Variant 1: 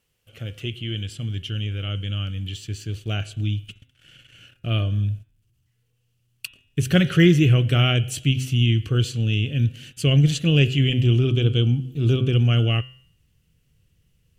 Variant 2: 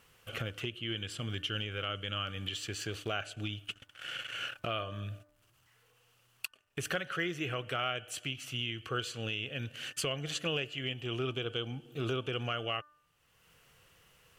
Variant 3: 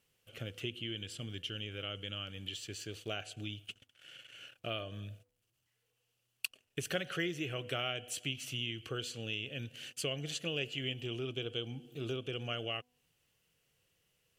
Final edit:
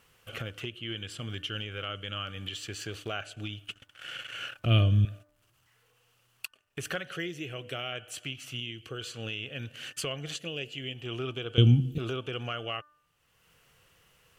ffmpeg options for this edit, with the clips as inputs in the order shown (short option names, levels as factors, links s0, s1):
-filter_complex "[0:a]asplit=2[s0][s1];[2:a]asplit=3[s2][s3][s4];[1:a]asplit=6[s5][s6][s7][s8][s9][s10];[s5]atrim=end=4.652[s11];[s0]atrim=start=4.648:end=5.052[s12];[s6]atrim=start=5.048:end=7.082[s13];[s2]atrim=start=7.078:end=7.922[s14];[s7]atrim=start=7.918:end=8.602[s15];[s3]atrim=start=8.598:end=9.012[s16];[s8]atrim=start=9.008:end=10.362[s17];[s4]atrim=start=10.358:end=10.962[s18];[s9]atrim=start=10.958:end=11.582[s19];[s1]atrim=start=11.578:end=11.982[s20];[s10]atrim=start=11.978[s21];[s11][s12]acrossfade=d=0.004:c1=hsin:c2=hsin[s22];[s22][s13]acrossfade=d=0.004:c1=hsin:c2=hsin[s23];[s23][s14]acrossfade=d=0.004:c1=hsin:c2=hsin[s24];[s24][s15]acrossfade=d=0.004:c1=hsin:c2=hsin[s25];[s25][s16]acrossfade=d=0.004:c1=hsin:c2=hsin[s26];[s26][s17]acrossfade=d=0.004:c1=hsin:c2=hsin[s27];[s27][s18]acrossfade=d=0.004:c1=hsin:c2=hsin[s28];[s28][s19]acrossfade=d=0.004:c1=hsin:c2=hsin[s29];[s29][s20]acrossfade=d=0.004:c1=hsin:c2=hsin[s30];[s30][s21]acrossfade=d=0.004:c1=hsin:c2=hsin"